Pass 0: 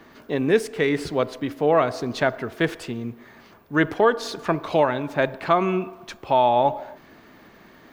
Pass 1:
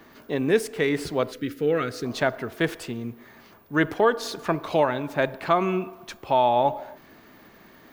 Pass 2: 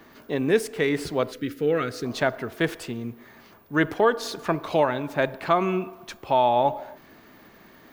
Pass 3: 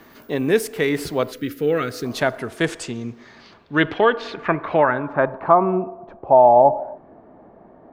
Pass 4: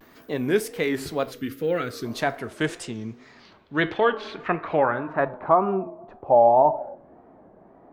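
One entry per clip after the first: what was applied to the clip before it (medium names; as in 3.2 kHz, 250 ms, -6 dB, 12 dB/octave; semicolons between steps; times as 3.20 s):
time-frequency box 1.32–2.05 s, 530–1200 Hz -16 dB; treble shelf 10 kHz +9.5 dB; trim -2 dB
no audible change
low-pass sweep 14 kHz -> 710 Hz, 2.01–5.91 s; trim +3 dB
wow and flutter 120 cents; flange 0.35 Hz, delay 8.4 ms, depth 3.4 ms, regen -79%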